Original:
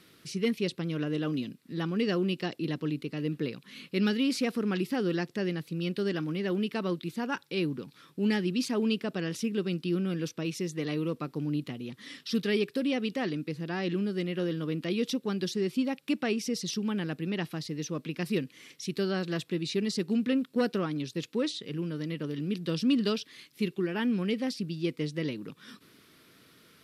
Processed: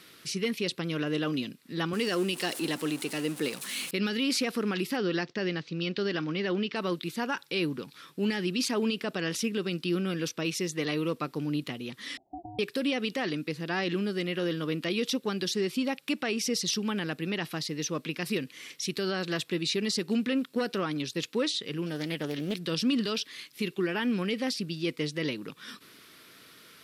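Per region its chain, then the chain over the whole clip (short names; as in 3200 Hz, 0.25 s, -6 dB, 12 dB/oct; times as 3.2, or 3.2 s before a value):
1.93–3.91 zero-crossing step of -44 dBFS + HPF 190 Hz + bell 9300 Hz +12.5 dB 0.89 oct
4.97–6.76 steep low-pass 6100 Hz + expander -53 dBFS
12.17–12.59 compressor 12:1, threshold -35 dBFS + ring modulator 520 Hz + steep low-pass 770 Hz 72 dB/oct
21.86–22.59 high shelf 8500 Hz +10.5 dB + Doppler distortion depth 0.29 ms
whole clip: low shelf 420 Hz -9.5 dB; limiter -26 dBFS; gain +7 dB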